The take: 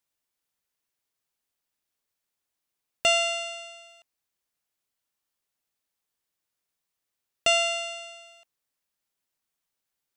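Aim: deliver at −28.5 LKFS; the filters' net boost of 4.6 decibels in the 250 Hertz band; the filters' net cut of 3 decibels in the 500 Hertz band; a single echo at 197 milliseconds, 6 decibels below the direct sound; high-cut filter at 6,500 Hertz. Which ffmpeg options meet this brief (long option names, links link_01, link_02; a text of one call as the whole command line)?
ffmpeg -i in.wav -af "lowpass=6500,equalizer=frequency=250:width_type=o:gain=8,equalizer=frequency=500:width_type=o:gain=-6.5,aecho=1:1:197:0.501,volume=-3.5dB" out.wav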